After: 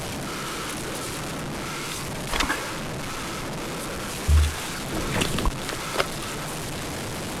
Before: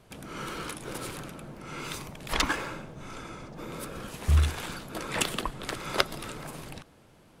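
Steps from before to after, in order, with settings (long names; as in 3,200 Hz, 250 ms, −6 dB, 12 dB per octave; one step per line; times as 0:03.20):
linear delta modulator 64 kbit/s, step −28 dBFS
0:04.92–0:05.49: low-shelf EQ 240 Hz +11 dB
level +3 dB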